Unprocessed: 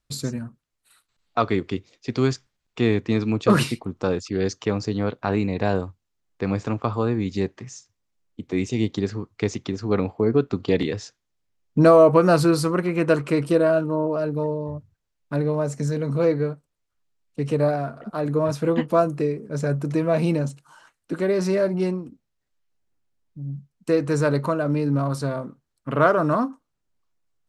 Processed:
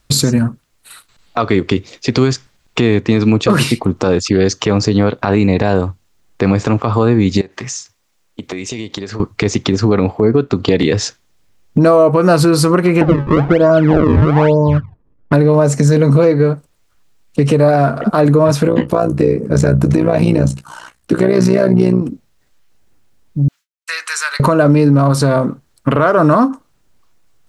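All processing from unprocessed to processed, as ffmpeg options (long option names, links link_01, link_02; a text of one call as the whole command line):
ffmpeg -i in.wav -filter_complex "[0:a]asettb=1/sr,asplit=3[link_01][link_02][link_03];[link_01]atrim=end=7.414[link_04];[link_02]atrim=start=7.41:end=9.2,asetpts=PTS-STARTPTS,afade=type=in:duration=0.004:curve=qsin,afade=type=out:start_time=1.786:duration=0.004:curve=qsin,lowshelf=frequency=370:gain=-11,acompressor=threshold=-40dB:ratio=16:attack=3.2:release=140:knee=1:detection=peak[link_05];[link_03]atrim=start=9.196[link_06];[link_04][link_05]acrossfade=duration=0.004:curve1=hsin:curve2=qsin[link_07];[link_07][link_06]acrossfade=duration=0.004:curve1=qsin:curve2=hsin,asettb=1/sr,asplit=3[link_08][link_09][link_10];[link_08]atrim=end=13.014[link_11];[link_09]atrim=start=13.01:end=15.33,asetpts=PTS-STARTPTS,afade=type=in:duration=0.004:curve=qsin,afade=type=out:start_time=2.316:duration=0.004:curve=qsin,acrusher=samples=35:mix=1:aa=0.000001:lfo=1:lforange=56:lforate=1.1,lowpass=1400,aphaser=in_gain=1:out_gain=1:delay=1.5:decay=0.34:speed=1:type=triangular[link_12];[link_10]atrim=start=15.326[link_13];[link_11][link_12]acrossfade=duration=0.004:curve1=hsin:curve2=qsin[link_14];[link_14][link_13]acrossfade=duration=0.004:curve1=qsin:curve2=hsin,asettb=1/sr,asplit=3[link_15][link_16][link_17];[link_15]atrim=end=18.674[link_18];[link_16]atrim=start=18.67:end=22.02,asetpts=PTS-STARTPTS,afade=type=in:duration=0.004:curve=qsin,afade=type=out:start_time=3.346:duration=0.004:curve=qsin,equalizer=frequency=150:width_type=o:width=2.5:gain=3.5,tremolo=f=61:d=0.824,asplit=2[link_19][link_20];[link_20]adelay=16,volume=-10.5dB[link_21];[link_19][link_21]amix=inputs=2:normalize=0,atrim=end_sample=147735[link_22];[link_17]atrim=start=22.016[link_23];[link_18][link_22]acrossfade=duration=0.004:curve1=hsin:curve2=qsin[link_24];[link_24][link_23]acrossfade=duration=0.004:curve1=qsin:curve2=hsin,asettb=1/sr,asplit=3[link_25][link_26][link_27];[link_25]atrim=end=23.484[link_28];[link_26]atrim=start=23.48:end=24.4,asetpts=PTS-STARTPTS,afade=type=in:duration=0.004:curve=qsin,afade=type=out:start_time=0.916:duration=0.004:curve=qsin,agate=range=-33dB:threshold=-40dB:ratio=3:release=100:detection=peak,highpass=frequency=1400:width=0.5412,highpass=frequency=1400:width=1.3066,acompressor=threshold=-40dB:ratio=2:attack=3.2:release=140:knee=1:detection=peak[link_29];[link_27]atrim=start=24.396[link_30];[link_28][link_29]acrossfade=duration=0.004:curve1=hsin:curve2=qsin[link_31];[link_31][link_30]acrossfade=duration=0.004:curve1=qsin:curve2=hsin,acompressor=threshold=-27dB:ratio=6,alimiter=level_in=21.5dB:limit=-1dB:release=50:level=0:latency=1,volume=-1dB" out.wav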